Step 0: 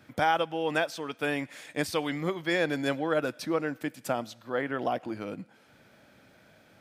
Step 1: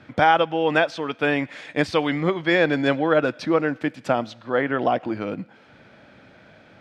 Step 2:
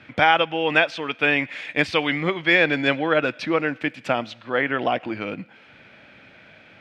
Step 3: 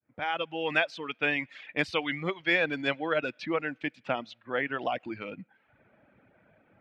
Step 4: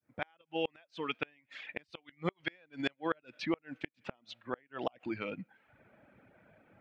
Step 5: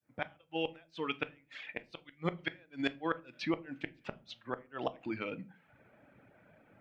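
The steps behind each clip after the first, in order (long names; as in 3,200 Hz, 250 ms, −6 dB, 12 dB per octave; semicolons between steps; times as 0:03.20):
low-pass filter 3,800 Hz 12 dB per octave; level +8.5 dB
parametric band 2,500 Hz +11 dB 1.1 octaves; level −2.5 dB
fade in at the beginning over 0.62 s; reverb reduction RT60 0.83 s; low-pass that shuts in the quiet parts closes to 1,000 Hz, open at −21 dBFS; level −7.5 dB
gate with flip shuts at −19 dBFS, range −36 dB
rectangular room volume 180 cubic metres, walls furnished, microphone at 0.36 metres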